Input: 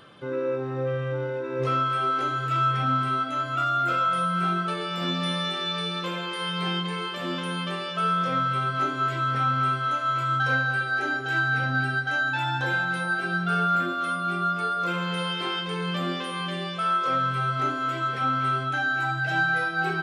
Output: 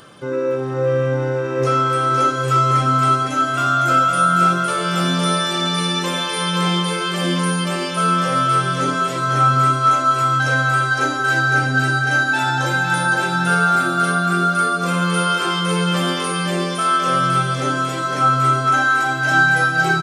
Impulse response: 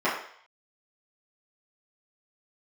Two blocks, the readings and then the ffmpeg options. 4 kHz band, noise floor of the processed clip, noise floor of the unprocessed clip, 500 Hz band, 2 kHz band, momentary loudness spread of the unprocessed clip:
+8.0 dB, -23 dBFS, -32 dBFS, +9.5 dB, +8.0 dB, 6 LU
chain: -af "highshelf=f=4700:t=q:w=1.5:g=8.5,aecho=1:1:510|841.5|1057|1197|1288:0.631|0.398|0.251|0.158|0.1,volume=2.24"

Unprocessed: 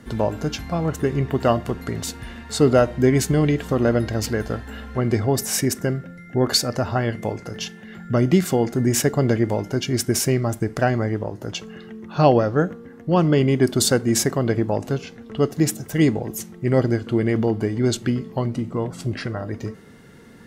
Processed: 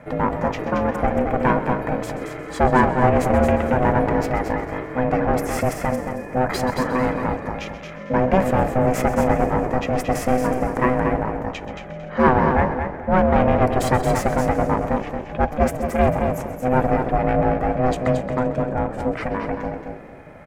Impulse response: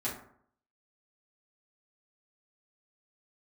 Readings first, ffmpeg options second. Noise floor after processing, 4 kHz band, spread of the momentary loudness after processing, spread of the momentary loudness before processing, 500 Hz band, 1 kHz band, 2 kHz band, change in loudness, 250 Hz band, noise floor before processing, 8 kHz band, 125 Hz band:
-35 dBFS, -10.5 dB, 10 LU, 13 LU, +1.5 dB, +8.5 dB, +4.0 dB, +0.5 dB, -0.5 dB, -43 dBFS, -11.5 dB, -2.5 dB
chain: -filter_complex "[0:a]aeval=exprs='clip(val(0),-1,0.119)':c=same,asplit=2[s0][s1];[s1]asplit=7[s2][s3][s4][s5][s6][s7][s8];[s2]adelay=130,afreqshift=-55,volume=0.2[s9];[s3]adelay=260,afreqshift=-110,volume=0.127[s10];[s4]adelay=390,afreqshift=-165,volume=0.0813[s11];[s5]adelay=520,afreqshift=-220,volume=0.0525[s12];[s6]adelay=650,afreqshift=-275,volume=0.0335[s13];[s7]adelay=780,afreqshift=-330,volume=0.0214[s14];[s8]adelay=910,afreqshift=-385,volume=0.0136[s15];[s9][s10][s11][s12][s13][s14][s15]amix=inputs=7:normalize=0[s16];[s0][s16]amix=inputs=2:normalize=0,aeval=exprs='val(0)*sin(2*PI*380*n/s)':c=same,highshelf=f=2900:t=q:w=1.5:g=-12,asplit=2[s17][s18];[s18]aecho=0:1:225|450|675:0.473|0.104|0.0229[s19];[s17][s19]amix=inputs=2:normalize=0,volume=1.68"

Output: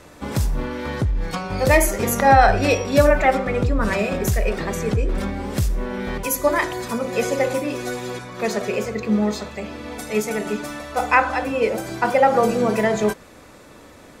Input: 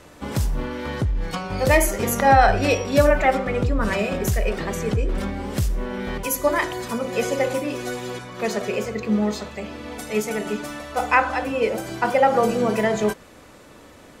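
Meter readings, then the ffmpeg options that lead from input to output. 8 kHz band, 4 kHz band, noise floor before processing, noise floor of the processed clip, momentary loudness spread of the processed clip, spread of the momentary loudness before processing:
+1.5 dB, +0.5 dB, -47 dBFS, -45 dBFS, 11 LU, 11 LU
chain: -af "bandreject=f=3000:w=19,volume=1.19"

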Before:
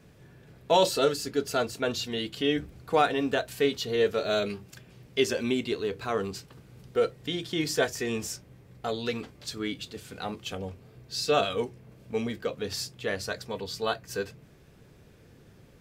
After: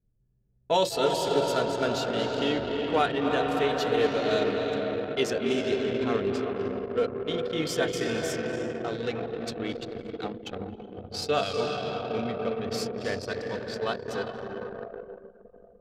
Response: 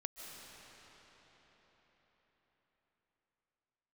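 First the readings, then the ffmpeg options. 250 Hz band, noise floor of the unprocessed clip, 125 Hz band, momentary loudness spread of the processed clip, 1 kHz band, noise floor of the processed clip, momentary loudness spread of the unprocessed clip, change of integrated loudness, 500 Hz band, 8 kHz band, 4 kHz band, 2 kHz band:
+2.0 dB, -56 dBFS, +2.0 dB, 12 LU, +1.5 dB, -57 dBFS, 12 LU, +1.0 dB, +2.0 dB, -3.0 dB, -1.0 dB, +0.5 dB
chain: -filter_complex "[1:a]atrim=start_sample=2205,asetrate=27783,aresample=44100[s0];[0:a][s0]afir=irnorm=-1:irlink=0,anlmdn=10"

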